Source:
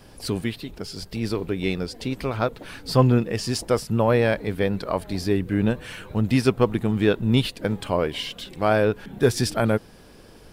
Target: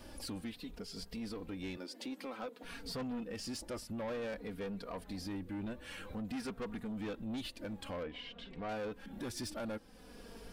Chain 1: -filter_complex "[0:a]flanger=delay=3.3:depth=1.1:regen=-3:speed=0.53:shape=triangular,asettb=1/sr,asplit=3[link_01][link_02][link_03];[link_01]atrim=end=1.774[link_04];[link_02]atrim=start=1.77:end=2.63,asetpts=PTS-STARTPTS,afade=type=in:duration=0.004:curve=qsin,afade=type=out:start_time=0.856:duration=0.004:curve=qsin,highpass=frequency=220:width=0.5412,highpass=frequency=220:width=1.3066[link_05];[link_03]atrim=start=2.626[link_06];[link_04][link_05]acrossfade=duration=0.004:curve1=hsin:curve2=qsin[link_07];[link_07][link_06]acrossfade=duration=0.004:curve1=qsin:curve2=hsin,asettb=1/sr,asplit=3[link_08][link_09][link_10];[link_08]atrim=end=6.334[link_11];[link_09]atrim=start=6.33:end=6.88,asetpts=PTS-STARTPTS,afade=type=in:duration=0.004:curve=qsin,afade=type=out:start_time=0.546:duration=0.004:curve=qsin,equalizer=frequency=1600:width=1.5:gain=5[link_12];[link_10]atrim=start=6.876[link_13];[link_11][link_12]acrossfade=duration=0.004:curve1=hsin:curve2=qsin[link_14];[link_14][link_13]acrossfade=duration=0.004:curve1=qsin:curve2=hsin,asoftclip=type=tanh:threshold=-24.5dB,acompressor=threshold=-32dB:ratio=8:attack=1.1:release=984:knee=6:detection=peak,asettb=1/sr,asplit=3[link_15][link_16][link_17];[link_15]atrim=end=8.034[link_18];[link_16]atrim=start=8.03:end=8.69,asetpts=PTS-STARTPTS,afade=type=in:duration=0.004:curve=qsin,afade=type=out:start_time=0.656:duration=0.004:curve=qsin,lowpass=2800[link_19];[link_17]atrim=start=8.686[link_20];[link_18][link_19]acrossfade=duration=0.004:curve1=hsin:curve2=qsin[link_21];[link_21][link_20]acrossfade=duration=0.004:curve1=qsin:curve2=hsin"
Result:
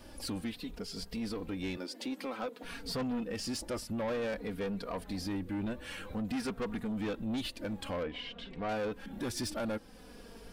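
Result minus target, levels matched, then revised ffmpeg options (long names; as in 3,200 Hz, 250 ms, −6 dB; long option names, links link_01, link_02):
downward compressor: peak gain reduction −5 dB
-filter_complex "[0:a]flanger=delay=3.3:depth=1.1:regen=-3:speed=0.53:shape=triangular,asettb=1/sr,asplit=3[link_01][link_02][link_03];[link_01]atrim=end=1.774[link_04];[link_02]atrim=start=1.77:end=2.63,asetpts=PTS-STARTPTS,afade=type=in:duration=0.004:curve=qsin,afade=type=out:start_time=0.856:duration=0.004:curve=qsin,highpass=frequency=220:width=0.5412,highpass=frequency=220:width=1.3066[link_05];[link_03]atrim=start=2.626[link_06];[link_04][link_05]acrossfade=duration=0.004:curve1=hsin:curve2=qsin[link_07];[link_07][link_06]acrossfade=duration=0.004:curve1=qsin:curve2=hsin,asettb=1/sr,asplit=3[link_08][link_09][link_10];[link_08]atrim=end=6.334[link_11];[link_09]atrim=start=6.33:end=6.88,asetpts=PTS-STARTPTS,afade=type=in:duration=0.004:curve=qsin,afade=type=out:start_time=0.546:duration=0.004:curve=qsin,equalizer=frequency=1600:width=1.5:gain=5[link_12];[link_10]atrim=start=6.876[link_13];[link_11][link_12]acrossfade=duration=0.004:curve1=hsin:curve2=qsin[link_14];[link_14][link_13]acrossfade=duration=0.004:curve1=qsin:curve2=hsin,asoftclip=type=tanh:threshold=-24.5dB,acompressor=threshold=-38dB:ratio=8:attack=1.1:release=984:knee=6:detection=peak,asettb=1/sr,asplit=3[link_15][link_16][link_17];[link_15]atrim=end=8.034[link_18];[link_16]atrim=start=8.03:end=8.69,asetpts=PTS-STARTPTS,afade=type=in:duration=0.004:curve=qsin,afade=type=out:start_time=0.656:duration=0.004:curve=qsin,lowpass=2800[link_19];[link_17]atrim=start=8.686[link_20];[link_18][link_19]acrossfade=duration=0.004:curve1=hsin:curve2=qsin[link_21];[link_21][link_20]acrossfade=duration=0.004:curve1=qsin:curve2=hsin"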